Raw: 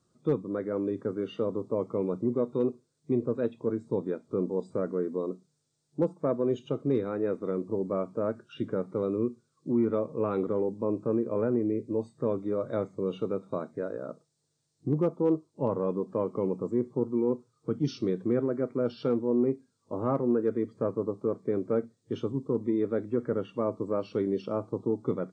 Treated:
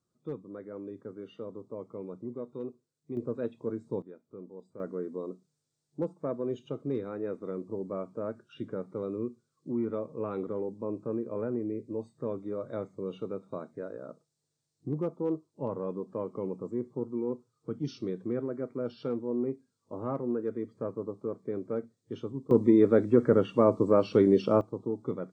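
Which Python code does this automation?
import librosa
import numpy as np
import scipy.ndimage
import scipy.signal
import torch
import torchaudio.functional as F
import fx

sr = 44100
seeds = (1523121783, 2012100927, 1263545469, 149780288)

y = fx.gain(x, sr, db=fx.steps((0.0, -11.0), (3.17, -4.5), (4.02, -16.5), (4.8, -5.5), (22.51, 7.0), (24.61, -4.0)))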